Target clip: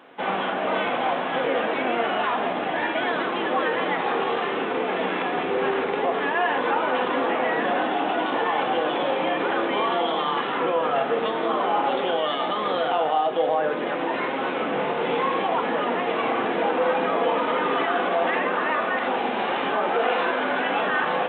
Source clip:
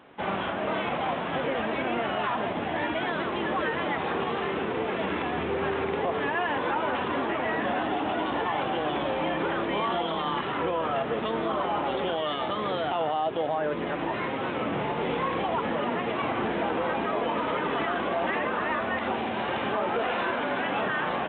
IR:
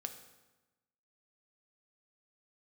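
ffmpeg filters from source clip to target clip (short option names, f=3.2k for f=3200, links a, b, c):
-filter_complex "[0:a]highpass=260[a];[1:a]atrim=start_sample=2205[b];[a][b]afir=irnorm=-1:irlink=0,volume=7dB"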